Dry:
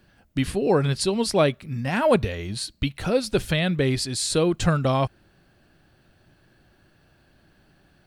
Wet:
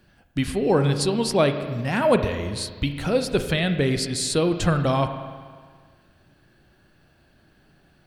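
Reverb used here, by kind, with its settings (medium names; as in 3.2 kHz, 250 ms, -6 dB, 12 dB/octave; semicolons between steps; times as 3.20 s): spring tank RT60 1.7 s, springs 35/49 ms, chirp 20 ms, DRR 8 dB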